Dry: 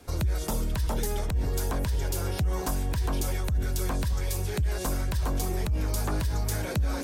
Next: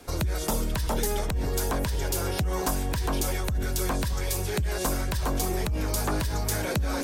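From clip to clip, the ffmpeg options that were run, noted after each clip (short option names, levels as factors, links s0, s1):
-af "equalizer=f=69:t=o:w=2.4:g=-6.5,volume=1.68"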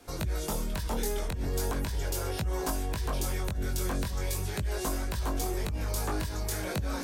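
-af "flanger=delay=18.5:depth=3.8:speed=0.39,volume=0.794"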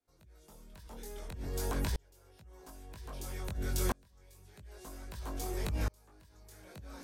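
-af "aeval=exprs='val(0)*pow(10,-35*if(lt(mod(-0.51*n/s,1),2*abs(-0.51)/1000),1-mod(-0.51*n/s,1)/(2*abs(-0.51)/1000),(mod(-0.51*n/s,1)-2*abs(-0.51)/1000)/(1-2*abs(-0.51)/1000))/20)':c=same,volume=1.12"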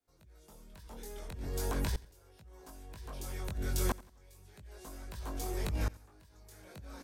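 -af "aecho=1:1:88|176|264:0.0891|0.0312|0.0109"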